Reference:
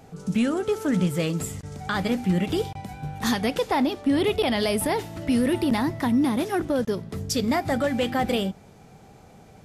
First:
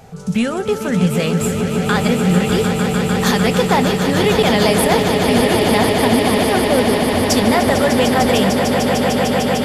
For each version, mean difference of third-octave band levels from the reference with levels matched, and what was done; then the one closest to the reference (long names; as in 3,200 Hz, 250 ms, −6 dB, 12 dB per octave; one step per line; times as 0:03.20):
9.0 dB: parametric band 300 Hz −13.5 dB 0.36 octaves
echo that builds up and dies away 150 ms, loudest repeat 8, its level −9 dB
level +8 dB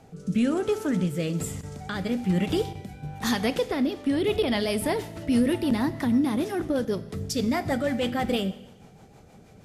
2.0 dB: rotating-speaker cabinet horn 1.1 Hz, later 6.3 Hz, at 0:03.74
four-comb reverb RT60 0.99 s, combs from 26 ms, DRR 15 dB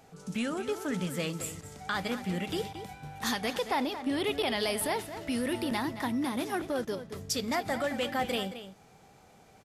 4.0 dB: low-shelf EQ 460 Hz −9 dB
slap from a distant wall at 38 metres, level −11 dB
level −3.5 dB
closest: second